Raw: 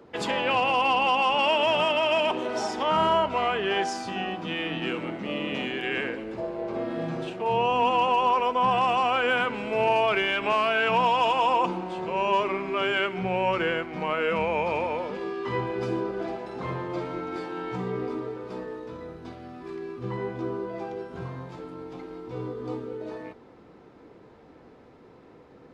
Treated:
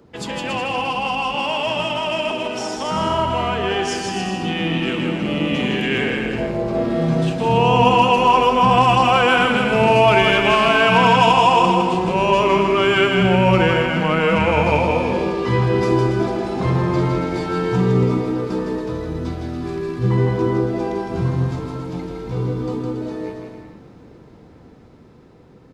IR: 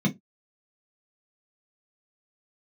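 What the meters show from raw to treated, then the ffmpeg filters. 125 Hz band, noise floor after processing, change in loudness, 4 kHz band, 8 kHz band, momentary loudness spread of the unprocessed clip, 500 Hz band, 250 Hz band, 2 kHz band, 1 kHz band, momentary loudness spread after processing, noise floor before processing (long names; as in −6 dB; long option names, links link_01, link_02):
+18.0 dB, −45 dBFS, +8.5 dB, +7.5 dB, can't be measured, 15 LU, +8.5 dB, +12.5 dB, +8.0 dB, +7.0 dB, 12 LU, −52 dBFS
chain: -filter_complex "[0:a]bass=frequency=250:gain=11,treble=frequency=4000:gain=8,dynaudnorm=framelen=970:gausssize=9:maxgain=11.5dB,asplit=2[link_01][link_02];[link_02]aecho=0:1:160|280|370|437.5|488.1:0.631|0.398|0.251|0.158|0.1[link_03];[link_01][link_03]amix=inputs=2:normalize=0,volume=-2.5dB"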